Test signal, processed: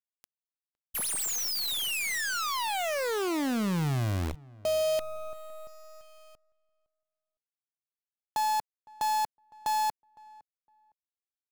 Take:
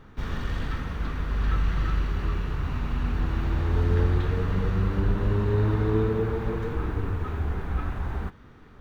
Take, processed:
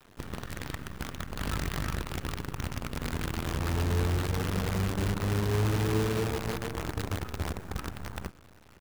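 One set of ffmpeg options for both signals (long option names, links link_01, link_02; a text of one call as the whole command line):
ffmpeg -i in.wav -filter_complex "[0:a]highpass=110,lowshelf=frequency=140:gain=9,acrusher=bits=5:dc=4:mix=0:aa=0.000001,asplit=2[link_01][link_02];[link_02]adelay=510,lowpass=frequency=1400:poles=1,volume=-22.5dB,asplit=2[link_03][link_04];[link_04]adelay=510,lowpass=frequency=1400:poles=1,volume=0.22[link_05];[link_03][link_05]amix=inputs=2:normalize=0[link_06];[link_01][link_06]amix=inputs=2:normalize=0,volume=-6dB" out.wav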